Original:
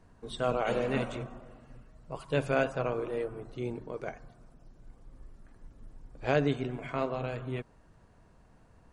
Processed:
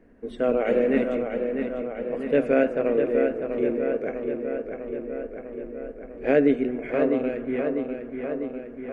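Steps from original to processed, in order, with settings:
octave-band graphic EQ 125/250/500/1,000/2,000/4,000/8,000 Hz −12/+12/+10/−10/+11/−10/−11 dB
feedback echo with a low-pass in the loop 649 ms, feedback 69%, low-pass 4,200 Hz, level −6 dB

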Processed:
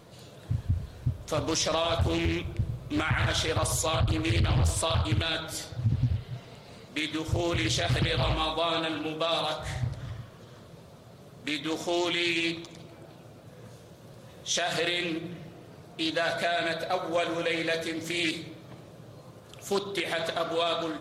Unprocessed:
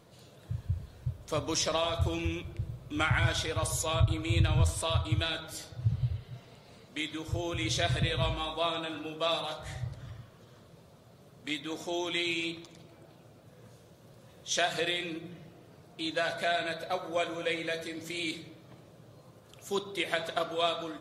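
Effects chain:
brickwall limiter −23.5 dBFS, peak gain reduction 10.5 dB
highs frequency-modulated by the lows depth 0.64 ms
level +6.5 dB

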